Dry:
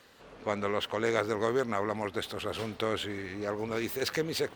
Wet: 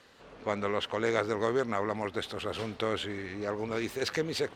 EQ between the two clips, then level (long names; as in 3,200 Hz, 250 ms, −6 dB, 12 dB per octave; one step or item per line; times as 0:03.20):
Bessel low-pass filter 8,400 Hz, order 2
0.0 dB